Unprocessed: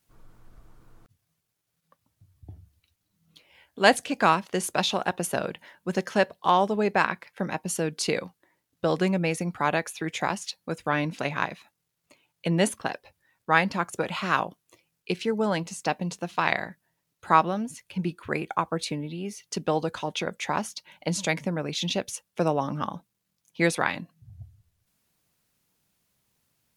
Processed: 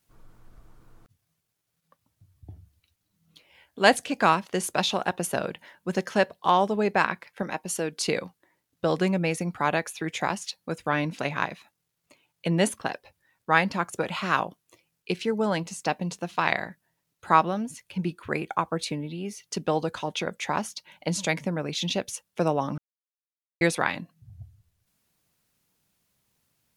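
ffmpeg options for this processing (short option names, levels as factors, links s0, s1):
-filter_complex "[0:a]asettb=1/sr,asplit=3[s0][s1][s2];[s0]atrim=end=7.424[s3];[s1]atrim=start=7.42:end=8.05,asetpts=PTS-STARTPTS,afade=t=in:d=0.004:c=qsin,afade=t=out:st=0.626:d=0.004:c=qsin,equalizer=f=120:w=0.78:g=-7.5[s4];[s2]atrim=start=8.046[s5];[s3][s4]acrossfade=d=0.004:c1=hsin:c2=qsin[s6];[s6][s5]acrossfade=d=0.004:c1=qsin:c2=hsin,asplit=3[s7][s8][s9];[s7]atrim=end=22.78,asetpts=PTS-STARTPTS,afade=t=out:st=22.776:d=0.004:c=hsin[s10];[s8]atrim=start=22.78:end=23.61,asetpts=PTS-STARTPTS,volume=0[s11];[s9]atrim=start=23.61,asetpts=PTS-STARTPTS,afade=t=in:d=0.004:c=hsin[s12];[s10][s11][s12]concat=n=3:v=0:a=1"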